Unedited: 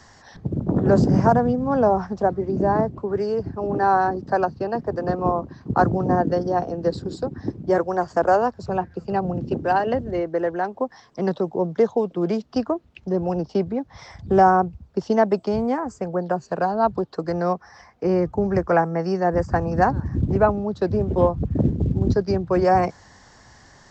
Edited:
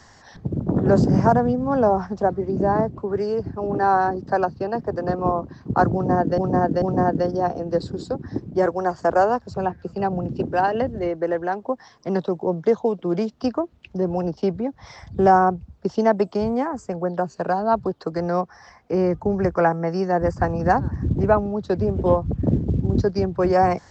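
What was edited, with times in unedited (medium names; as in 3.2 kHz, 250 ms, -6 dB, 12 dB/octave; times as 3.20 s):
5.94–6.38 s: loop, 3 plays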